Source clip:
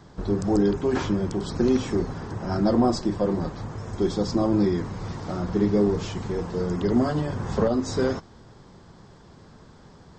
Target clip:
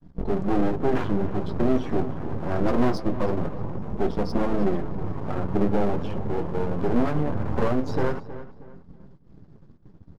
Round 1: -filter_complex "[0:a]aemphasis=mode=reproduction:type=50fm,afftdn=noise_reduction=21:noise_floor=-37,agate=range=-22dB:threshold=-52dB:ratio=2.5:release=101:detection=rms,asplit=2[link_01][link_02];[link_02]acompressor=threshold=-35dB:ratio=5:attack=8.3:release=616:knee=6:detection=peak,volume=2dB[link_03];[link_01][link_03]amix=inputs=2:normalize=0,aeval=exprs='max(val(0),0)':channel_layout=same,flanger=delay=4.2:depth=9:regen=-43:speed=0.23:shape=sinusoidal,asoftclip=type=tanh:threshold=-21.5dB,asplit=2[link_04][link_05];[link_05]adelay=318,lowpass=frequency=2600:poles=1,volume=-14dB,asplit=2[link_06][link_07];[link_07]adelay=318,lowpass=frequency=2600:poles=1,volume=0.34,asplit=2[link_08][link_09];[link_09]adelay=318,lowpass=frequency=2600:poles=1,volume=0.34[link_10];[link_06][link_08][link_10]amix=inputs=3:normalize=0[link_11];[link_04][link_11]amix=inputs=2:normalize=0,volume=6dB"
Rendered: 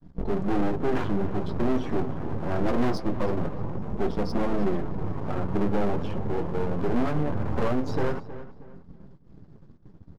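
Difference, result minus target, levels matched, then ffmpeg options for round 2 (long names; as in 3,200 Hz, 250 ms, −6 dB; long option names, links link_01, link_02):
soft clipping: distortion +10 dB
-filter_complex "[0:a]aemphasis=mode=reproduction:type=50fm,afftdn=noise_reduction=21:noise_floor=-37,agate=range=-22dB:threshold=-52dB:ratio=2.5:release=101:detection=rms,asplit=2[link_01][link_02];[link_02]acompressor=threshold=-35dB:ratio=5:attack=8.3:release=616:knee=6:detection=peak,volume=2dB[link_03];[link_01][link_03]amix=inputs=2:normalize=0,aeval=exprs='max(val(0),0)':channel_layout=same,flanger=delay=4.2:depth=9:regen=-43:speed=0.23:shape=sinusoidal,asoftclip=type=tanh:threshold=-14dB,asplit=2[link_04][link_05];[link_05]adelay=318,lowpass=frequency=2600:poles=1,volume=-14dB,asplit=2[link_06][link_07];[link_07]adelay=318,lowpass=frequency=2600:poles=1,volume=0.34,asplit=2[link_08][link_09];[link_09]adelay=318,lowpass=frequency=2600:poles=1,volume=0.34[link_10];[link_06][link_08][link_10]amix=inputs=3:normalize=0[link_11];[link_04][link_11]amix=inputs=2:normalize=0,volume=6dB"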